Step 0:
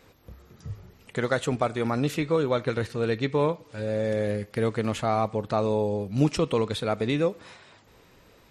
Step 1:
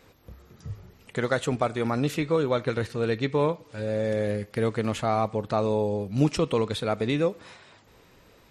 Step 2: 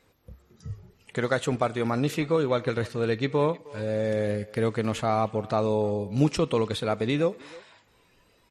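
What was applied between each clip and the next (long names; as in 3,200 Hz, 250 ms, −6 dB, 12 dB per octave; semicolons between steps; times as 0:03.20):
no processing that can be heard
noise reduction from a noise print of the clip's start 8 dB; far-end echo of a speakerphone 310 ms, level −20 dB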